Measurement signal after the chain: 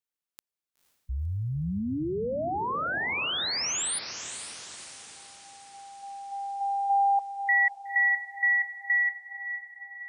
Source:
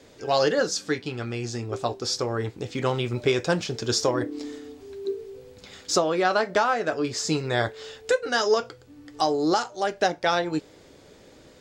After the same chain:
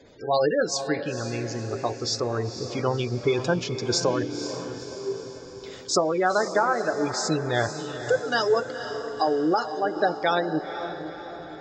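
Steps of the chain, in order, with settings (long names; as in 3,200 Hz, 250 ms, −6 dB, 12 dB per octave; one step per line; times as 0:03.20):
gate on every frequency bin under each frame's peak −20 dB strong
feedback delay with all-pass diffusion 497 ms, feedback 54%, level −9.5 dB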